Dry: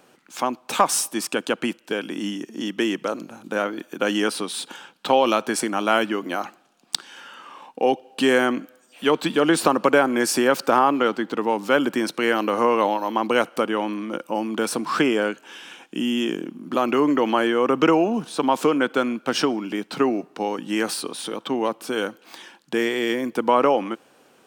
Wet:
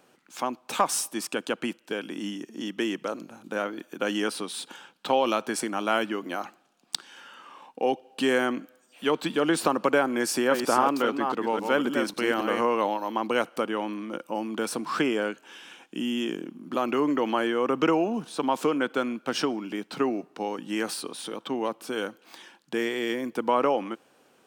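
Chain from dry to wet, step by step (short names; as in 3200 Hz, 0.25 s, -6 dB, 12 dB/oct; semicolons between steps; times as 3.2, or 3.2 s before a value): 10.24–12.61 reverse delay 0.271 s, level -5 dB; gain -5.5 dB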